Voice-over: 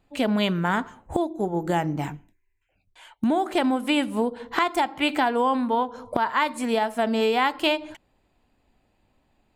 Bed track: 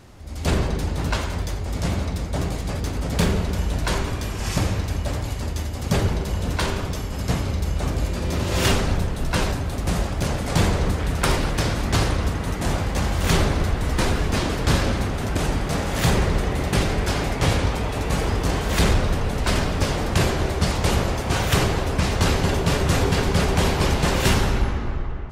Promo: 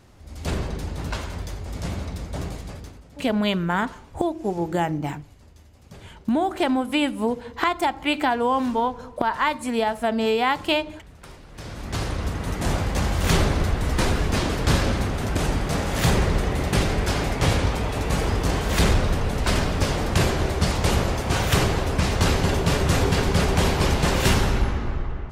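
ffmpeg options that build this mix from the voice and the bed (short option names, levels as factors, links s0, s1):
-filter_complex "[0:a]adelay=3050,volume=1.06[s0];[1:a]volume=7.5,afade=t=out:st=2.47:d=0.57:silence=0.125893,afade=t=in:st=11.48:d=1.2:silence=0.0707946[s1];[s0][s1]amix=inputs=2:normalize=0"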